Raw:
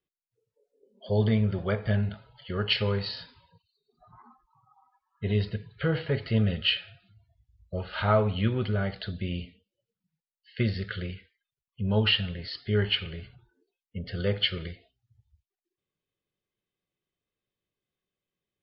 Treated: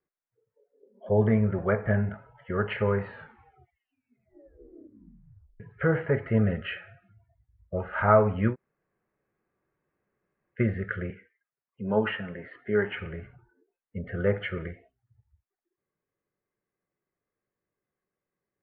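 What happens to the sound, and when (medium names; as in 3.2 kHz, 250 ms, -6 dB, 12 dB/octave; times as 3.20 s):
3.05 s: tape stop 2.55 s
8.53–10.58 s: room tone, crossfade 0.06 s
11.10–12.97 s: three-band isolator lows -17 dB, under 160 Hz, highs -21 dB, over 4.4 kHz
whole clip: steep low-pass 2 kHz 36 dB/octave; bass shelf 180 Hz -7.5 dB; trim +5 dB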